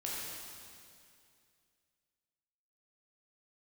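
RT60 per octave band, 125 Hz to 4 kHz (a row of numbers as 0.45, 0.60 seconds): 2.6, 2.5, 2.5, 2.3, 2.3, 2.3 seconds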